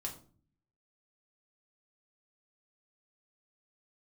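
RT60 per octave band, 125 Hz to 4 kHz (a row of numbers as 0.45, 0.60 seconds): 0.90, 0.80, 0.50, 0.40, 0.30, 0.30 seconds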